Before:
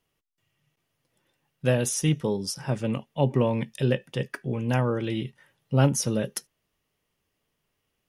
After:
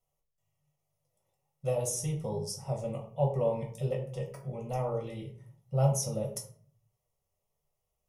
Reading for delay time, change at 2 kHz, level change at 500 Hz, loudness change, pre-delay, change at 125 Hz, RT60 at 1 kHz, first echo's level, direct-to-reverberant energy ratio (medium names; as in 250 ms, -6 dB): no echo, -18.5 dB, -4.5 dB, -6.5 dB, 5 ms, -6.0 dB, 0.45 s, no echo, 0.0 dB